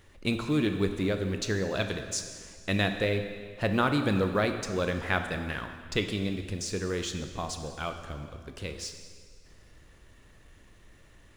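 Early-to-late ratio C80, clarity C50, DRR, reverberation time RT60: 8.5 dB, 7.5 dB, 6.0 dB, 1.9 s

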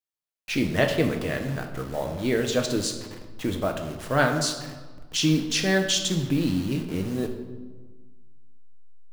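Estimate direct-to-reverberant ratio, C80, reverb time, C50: 3.5 dB, 10.0 dB, 1.4 s, 7.5 dB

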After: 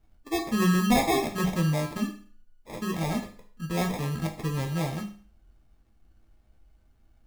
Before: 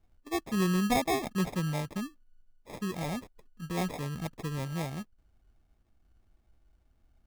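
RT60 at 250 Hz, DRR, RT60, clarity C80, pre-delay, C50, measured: 0.45 s, 2.5 dB, 0.45 s, 14.5 dB, 10 ms, 10.5 dB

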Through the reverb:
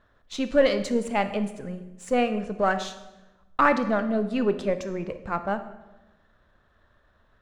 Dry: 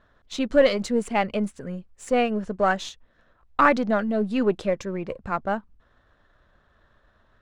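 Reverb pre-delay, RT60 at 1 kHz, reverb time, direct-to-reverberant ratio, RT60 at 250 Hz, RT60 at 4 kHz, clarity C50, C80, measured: 24 ms, 0.95 s, 1.0 s, 9.5 dB, 1.3 s, 0.85 s, 11.5 dB, 13.5 dB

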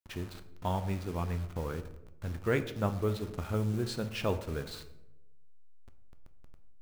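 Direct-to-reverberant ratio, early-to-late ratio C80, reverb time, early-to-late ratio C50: 8.5 dB, 15.5 dB, 0.90 s, 13.0 dB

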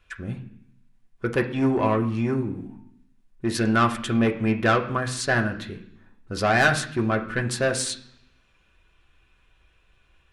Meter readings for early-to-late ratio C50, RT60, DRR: 12.0 dB, 0.65 s, 2.0 dB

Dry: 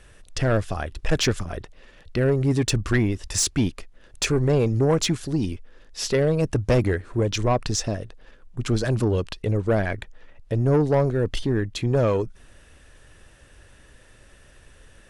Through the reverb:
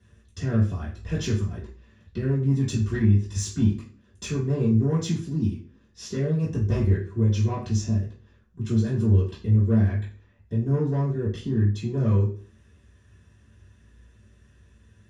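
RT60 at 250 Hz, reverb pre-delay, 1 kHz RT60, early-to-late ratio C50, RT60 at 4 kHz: 0.50 s, 3 ms, 0.45 s, 6.5 dB, 0.40 s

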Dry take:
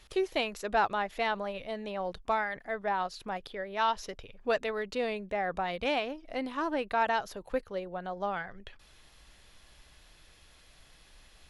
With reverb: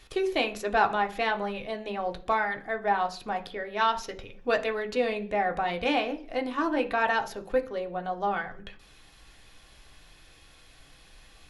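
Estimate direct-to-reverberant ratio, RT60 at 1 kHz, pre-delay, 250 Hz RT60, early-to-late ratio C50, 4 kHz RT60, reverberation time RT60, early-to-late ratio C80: 3.0 dB, 0.40 s, 3 ms, 0.65 s, 15.5 dB, 0.55 s, 0.45 s, 20.0 dB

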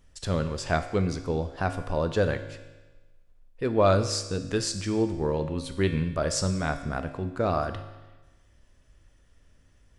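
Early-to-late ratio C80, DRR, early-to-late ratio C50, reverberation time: 11.5 dB, 7.5 dB, 10.0 dB, 1.2 s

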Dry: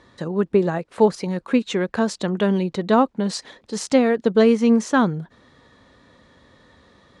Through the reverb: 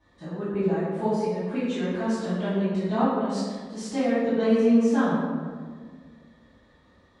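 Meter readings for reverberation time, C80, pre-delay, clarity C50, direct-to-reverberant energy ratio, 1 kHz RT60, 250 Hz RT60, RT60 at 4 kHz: 1.7 s, 0.5 dB, 3 ms, -2.0 dB, -17.0 dB, 1.5 s, 2.2 s, 0.90 s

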